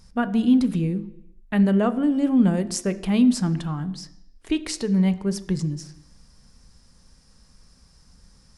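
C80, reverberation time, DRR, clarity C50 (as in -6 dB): 18.5 dB, 0.85 s, 11.0 dB, 16.5 dB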